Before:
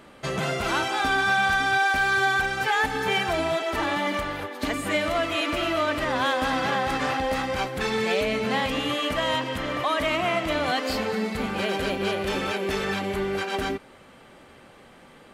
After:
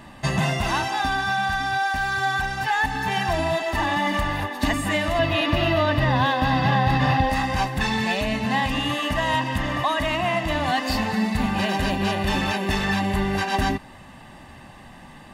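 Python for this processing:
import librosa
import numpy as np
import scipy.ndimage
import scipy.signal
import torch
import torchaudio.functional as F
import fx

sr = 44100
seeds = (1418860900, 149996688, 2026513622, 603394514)

y = fx.low_shelf(x, sr, hz=190.0, db=5.5)
y = y + 0.7 * np.pad(y, (int(1.1 * sr / 1000.0), 0))[:len(y)]
y = fx.rider(y, sr, range_db=4, speed_s=0.5)
y = fx.graphic_eq_10(y, sr, hz=(125, 500, 4000, 8000), db=(12, 5, 5, -11), at=(5.19, 7.3))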